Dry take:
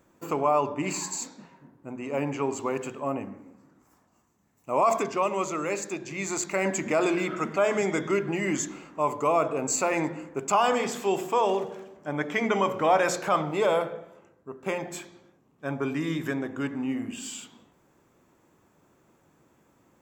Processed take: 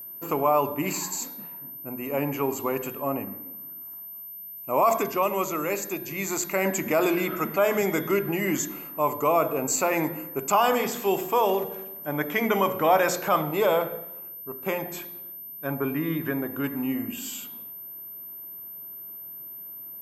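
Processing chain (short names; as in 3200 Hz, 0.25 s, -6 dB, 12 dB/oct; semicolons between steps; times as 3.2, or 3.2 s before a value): 14.81–16.64 treble ducked by the level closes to 2500 Hz, closed at -27 dBFS; whine 13000 Hz -39 dBFS; gain +1.5 dB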